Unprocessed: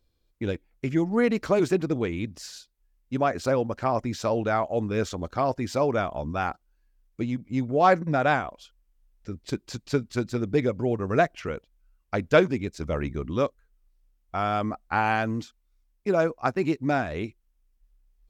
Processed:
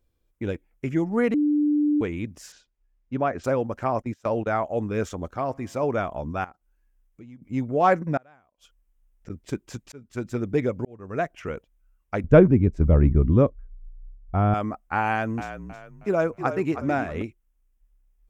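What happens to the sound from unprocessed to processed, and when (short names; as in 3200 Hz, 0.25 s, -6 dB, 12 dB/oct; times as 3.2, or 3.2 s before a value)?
1.34–2.01 bleep 296 Hz -18 dBFS
2.52–3.44 air absorption 130 m
4.02–4.66 gate -30 dBFS, range -22 dB
5.32–5.83 resonator 68 Hz, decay 1.8 s, mix 30%
6.44–7.42 compressor 2:1, threshold -55 dBFS
8.17–9.3 flipped gate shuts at -26 dBFS, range -32 dB
9.92–10.33 fade in
10.85–11.49 fade in
12.24–14.54 tilt -4.5 dB/oct
15.06–17.22 frequency-shifting echo 0.317 s, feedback 37%, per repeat -44 Hz, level -10 dB
whole clip: bell 4300 Hz -11 dB 0.62 oct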